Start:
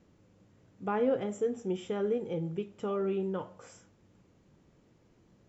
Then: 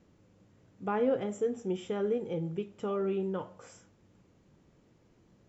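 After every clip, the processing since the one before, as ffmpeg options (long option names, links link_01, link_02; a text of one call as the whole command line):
ffmpeg -i in.wav -af anull out.wav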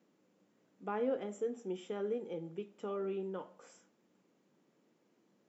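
ffmpeg -i in.wav -af "highpass=frequency=200:width=0.5412,highpass=frequency=200:width=1.3066,volume=-6dB" out.wav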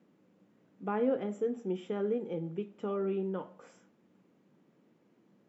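ffmpeg -i in.wav -af "bass=frequency=250:gain=7,treble=frequency=4000:gain=-9,volume=3.5dB" out.wav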